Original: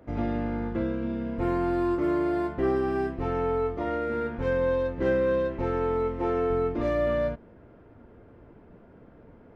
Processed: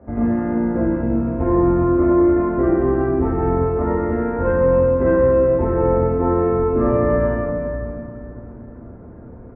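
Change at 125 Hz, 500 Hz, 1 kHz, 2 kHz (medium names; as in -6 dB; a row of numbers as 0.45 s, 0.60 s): +12.0 dB, +9.0 dB, +7.5 dB, +3.5 dB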